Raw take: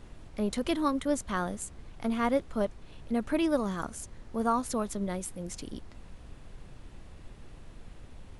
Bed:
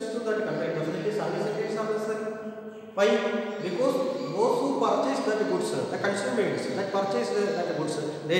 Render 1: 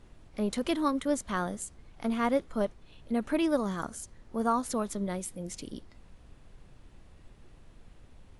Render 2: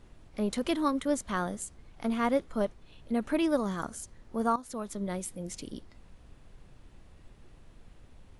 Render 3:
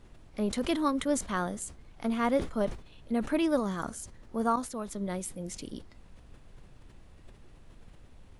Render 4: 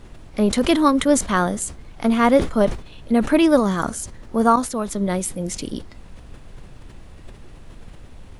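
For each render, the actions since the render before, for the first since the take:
noise reduction from a noise print 6 dB
0:04.56–0:05.15: fade in, from −14 dB
level that may fall only so fast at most 130 dB per second
level +12 dB

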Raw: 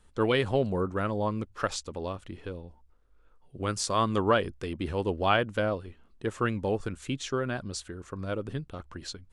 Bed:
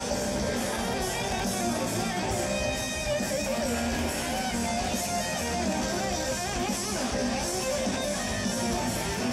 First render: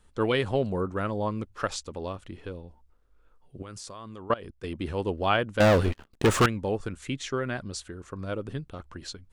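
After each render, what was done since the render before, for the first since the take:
0:03.62–0:04.64: output level in coarse steps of 21 dB
0:05.60–0:06.46: leveller curve on the samples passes 5
0:07.02–0:07.63: parametric band 2,000 Hz +7.5 dB 0.33 octaves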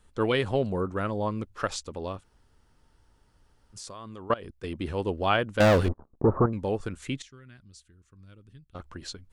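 0:02.22–0:03.75: fill with room tone, crossfade 0.06 s
0:05.88–0:06.53: Butterworth low-pass 1,100 Hz
0:07.22–0:08.75: guitar amp tone stack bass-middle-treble 6-0-2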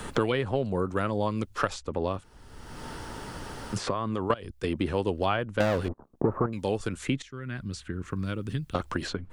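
multiband upward and downward compressor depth 100%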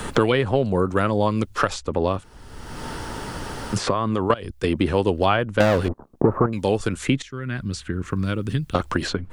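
level +7.5 dB
brickwall limiter −3 dBFS, peak gain reduction 2.5 dB

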